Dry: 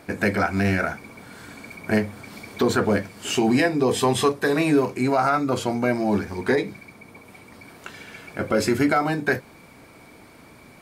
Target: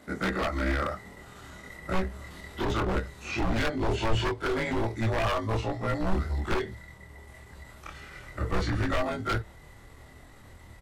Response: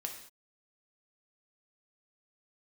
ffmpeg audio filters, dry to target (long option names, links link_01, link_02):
-filter_complex "[0:a]afftfilt=real='re':imag='-im':win_size=2048:overlap=0.75,acrossover=split=120|580|5200[link_01][link_02][link_03][link_04];[link_04]acompressor=threshold=-56dB:ratio=8[link_05];[link_01][link_02][link_03][link_05]amix=inputs=4:normalize=0,aeval=exprs='0.0841*(abs(mod(val(0)/0.0841+3,4)-2)-1)':channel_layout=same,asubboost=boost=8.5:cutoff=80,asetrate=38170,aresample=44100,atempo=1.15535"